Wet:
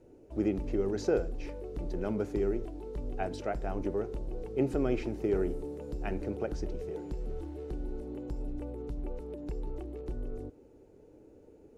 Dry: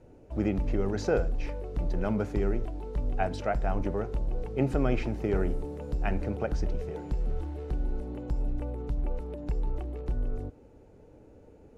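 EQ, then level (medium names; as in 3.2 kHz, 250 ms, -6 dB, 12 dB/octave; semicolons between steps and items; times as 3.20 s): peaking EQ 360 Hz +10 dB 1 oct; treble shelf 3.7 kHz +8 dB; -8.0 dB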